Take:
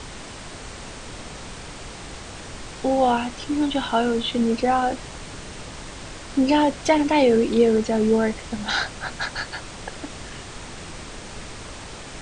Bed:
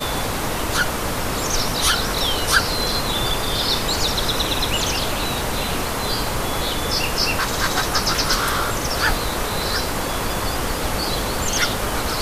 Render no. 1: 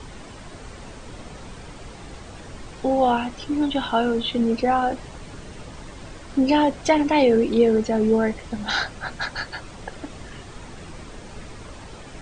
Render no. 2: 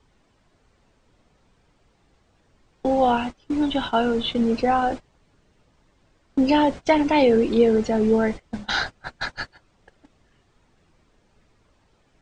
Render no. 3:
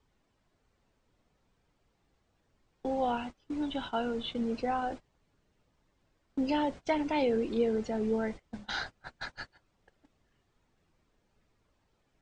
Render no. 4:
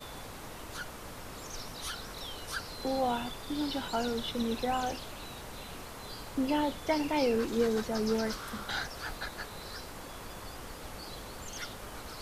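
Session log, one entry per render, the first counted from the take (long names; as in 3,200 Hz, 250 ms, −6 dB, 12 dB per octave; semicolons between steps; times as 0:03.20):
broadband denoise 8 dB, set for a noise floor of −38 dBFS
low-pass filter 7,600 Hz 12 dB per octave; noise gate −28 dBFS, range −23 dB
level −11.5 dB
mix in bed −21 dB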